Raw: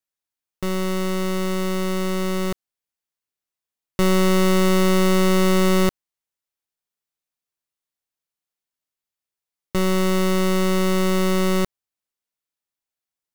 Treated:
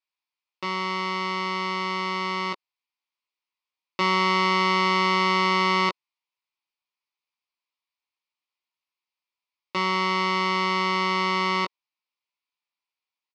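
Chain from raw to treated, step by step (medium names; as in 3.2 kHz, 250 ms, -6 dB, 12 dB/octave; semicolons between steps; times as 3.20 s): cabinet simulation 410–4800 Hz, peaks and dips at 440 Hz -7 dB, 660 Hz -8 dB, 1 kHz +8 dB, 1.6 kHz -9 dB, 2.4 kHz +8 dB, 4.8 kHz +4 dB; doubling 17 ms -4.5 dB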